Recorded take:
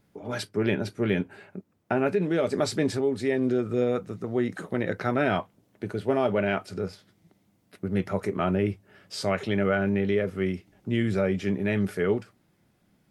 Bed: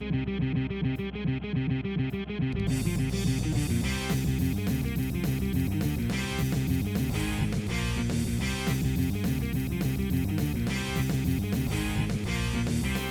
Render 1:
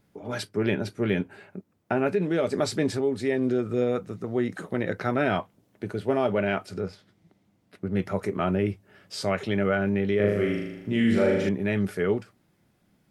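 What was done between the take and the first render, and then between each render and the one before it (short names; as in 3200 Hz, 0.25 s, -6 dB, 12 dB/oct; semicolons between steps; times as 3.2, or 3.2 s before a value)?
6.8–7.99 high shelf 7600 Hz -10 dB; 10.16–11.49 flutter echo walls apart 6.7 m, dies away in 0.98 s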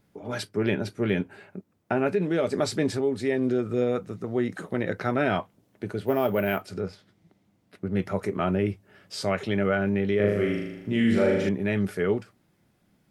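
6.06–6.62 careless resampling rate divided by 3×, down none, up hold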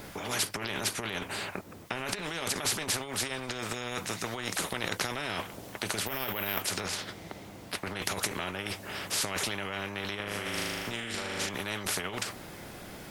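negative-ratio compressor -30 dBFS, ratio -1; spectral compressor 4:1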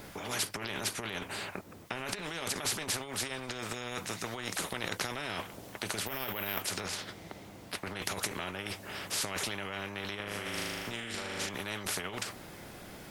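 gain -3 dB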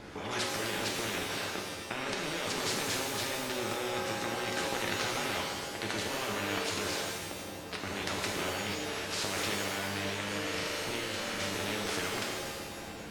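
air absorption 76 m; shimmer reverb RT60 1.2 s, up +7 st, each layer -2 dB, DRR 1 dB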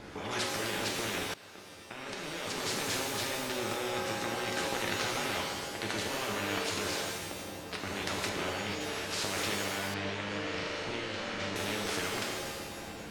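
1.34–2.96 fade in, from -19.5 dB; 8.29–8.81 high shelf 8200 Hz -9.5 dB; 9.94–11.56 air absorption 110 m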